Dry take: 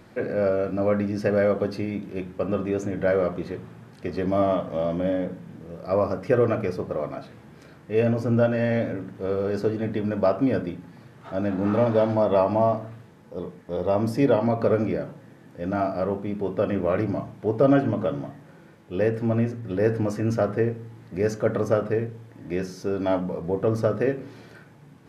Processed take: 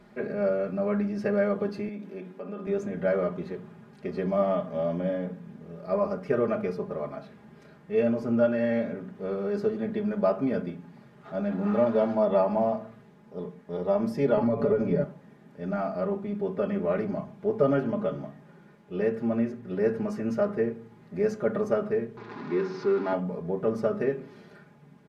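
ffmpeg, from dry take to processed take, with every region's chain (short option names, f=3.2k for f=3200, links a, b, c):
-filter_complex "[0:a]asettb=1/sr,asplit=3[a][b][c];[a]atrim=end=1.884[d];[b]atrim=start=1.88:end=2.67,asetpts=PTS-STARTPTS,afade=t=in:d=0.004:c=qsin,afade=t=out:st=0.786:d=0.004:c=qsin,highpass=f=190:w=0.5412,highpass=f=190:w=1.3066,acompressor=threshold=-31dB:ratio=3:attack=3.2:release=140:knee=1:detection=peak[e];[c]atrim=start=2.666[f];[d][e]acrossfade=d=0.004:c1=hsin:c2=qsin[g];[g][f]acrossfade=d=0.004:c1=qsin:c2=hsin,asettb=1/sr,asplit=3[h][i][j];[h]atrim=end=14.374[k];[i]atrim=start=14.37:end=15.04,asetpts=PTS-STARTPTS,afade=t=in:d=0.004:c=qsin,afade=t=out:st=0.666:d=0.004:c=qsin,lowshelf=f=360:g=10,aecho=1:1:7:0.58,atrim=end_sample=29547,acompressor=threshold=-16dB:ratio=4:attack=3.2:release=140:knee=1:detection=peak[l];[j]atrim=start=15.036[m];[k][l]acrossfade=d=0.004:c1=hsin:c2=qsin[n];[n][m]acrossfade=d=0.004:c1=qsin:c2=hsin,asettb=1/sr,asplit=3[o][p][q];[o]atrim=end=22.174[r];[p]atrim=start=22.17:end=23.13,asetpts=PTS-STARTPTS,afade=t=in:d=0.004:c=qsin,afade=t=out:st=0.956:d=0.004:c=qsin,aeval=exprs='val(0)+0.5*0.0355*sgn(val(0))':c=same,highpass=f=120:w=0.5412,highpass=f=120:w=1.3066,equalizer=f=180:t=q:w=4:g=-7,equalizer=f=370:t=q:w=4:g=5,equalizer=f=600:t=q:w=4:g=-9,equalizer=f=980:t=q:w=4:g=6,equalizer=f=1.4k:t=q:w=4:g=4,equalizer=f=3.1k:t=q:w=4:g=-8,lowpass=f=4.4k:w=0.5412,lowpass=f=4.4k:w=1.3066[s];[q]atrim=start=23.126[t];[r][s]acrossfade=d=0.004:c1=hsin:c2=qsin[u];[u][t]acrossfade=d=0.004:c1=qsin:c2=hsin,highshelf=f=4.1k:g=-7.5,aecho=1:1:4.9:0.89,volume=-6dB"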